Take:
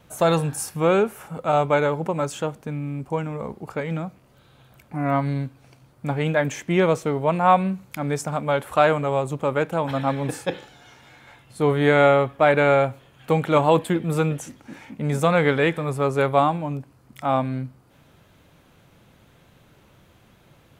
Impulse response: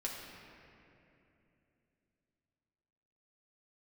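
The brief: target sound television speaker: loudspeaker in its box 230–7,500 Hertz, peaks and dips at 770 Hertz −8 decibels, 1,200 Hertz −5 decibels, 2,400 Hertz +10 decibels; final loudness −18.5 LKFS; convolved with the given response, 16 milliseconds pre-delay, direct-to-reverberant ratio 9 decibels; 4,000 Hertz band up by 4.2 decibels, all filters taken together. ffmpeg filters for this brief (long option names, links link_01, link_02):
-filter_complex "[0:a]equalizer=frequency=4000:width_type=o:gain=3.5,asplit=2[link_01][link_02];[1:a]atrim=start_sample=2205,adelay=16[link_03];[link_02][link_03]afir=irnorm=-1:irlink=0,volume=-10.5dB[link_04];[link_01][link_04]amix=inputs=2:normalize=0,highpass=frequency=230:width=0.5412,highpass=frequency=230:width=1.3066,equalizer=frequency=770:width_type=q:width=4:gain=-8,equalizer=frequency=1200:width_type=q:width=4:gain=-5,equalizer=frequency=2400:width_type=q:width=4:gain=10,lowpass=frequency=7500:width=0.5412,lowpass=frequency=7500:width=1.3066,volume=4dB"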